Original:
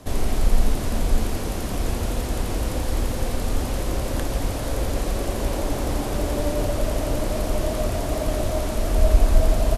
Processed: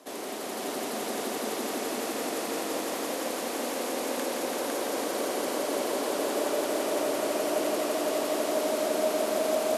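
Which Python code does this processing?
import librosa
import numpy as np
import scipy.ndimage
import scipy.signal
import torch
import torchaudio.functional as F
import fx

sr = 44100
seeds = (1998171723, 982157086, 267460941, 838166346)

y = scipy.signal.sosfilt(scipy.signal.butter(4, 280.0, 'highpass', fs=sr, output='sos'), x)
y = fx.echo_heads(y, sr, ms=168, heads='all three', feedback_pct=73, wet_db=-6.0)
y = F.gain(torch.from_numpy(y), -5.0).numpy()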